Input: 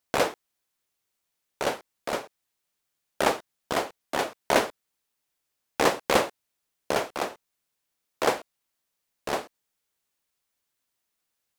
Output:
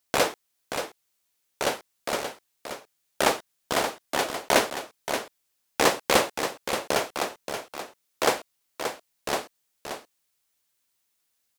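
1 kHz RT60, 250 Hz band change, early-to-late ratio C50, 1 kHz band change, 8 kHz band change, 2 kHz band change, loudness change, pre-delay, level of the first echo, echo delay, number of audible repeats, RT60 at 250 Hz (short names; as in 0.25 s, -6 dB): none, +0.5 dB, none, +1.5 dB, +6.0 dB, +2.5 dB, +1.0 dB, none, -8.0 dB, 0.578 s, 1, none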